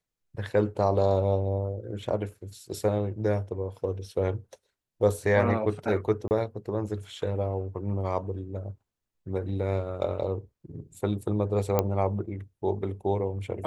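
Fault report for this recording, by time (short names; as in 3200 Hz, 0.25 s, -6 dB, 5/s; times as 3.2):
6.28–6.31 gap 29 ms
11.79 pop -10 dBFS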